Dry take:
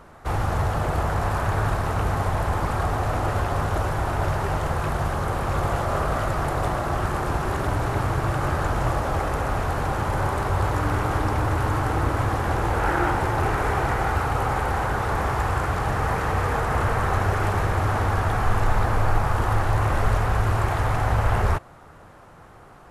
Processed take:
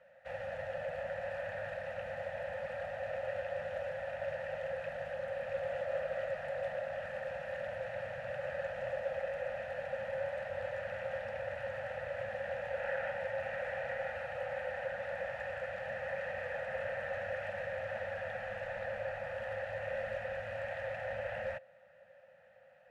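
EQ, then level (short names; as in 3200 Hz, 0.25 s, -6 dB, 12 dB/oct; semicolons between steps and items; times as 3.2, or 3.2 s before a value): vowel filter e; Chebyshev band-stop 220–530 Hz, order 4; +1.0 dB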